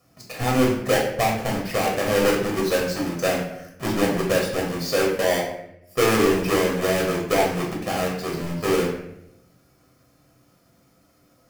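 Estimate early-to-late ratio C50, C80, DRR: 4.0 dB, 7.5 dB, -2.0 dB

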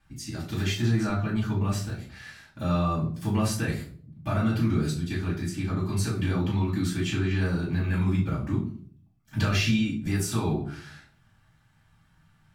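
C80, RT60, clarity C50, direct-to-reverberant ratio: 11.5 dB, 0.50 s, 7.5 dB, -8.0 dB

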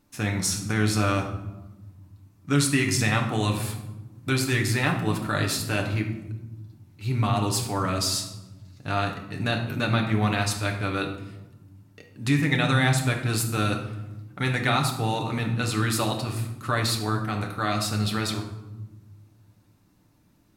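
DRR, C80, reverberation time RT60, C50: 1.5 dB, 10.0 dB, 1.1 s, 7.0 dB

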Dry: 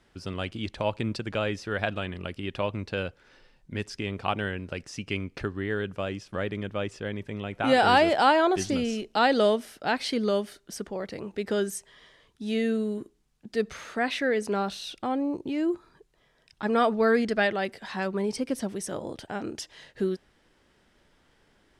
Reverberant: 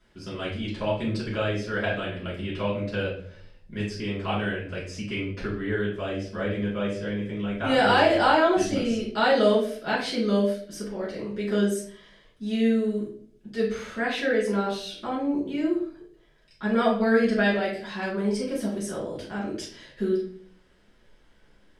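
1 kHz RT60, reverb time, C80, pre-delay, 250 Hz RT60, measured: 0.45 s, 0.55 s, 9.5 dB, 3 ms, 0.75 s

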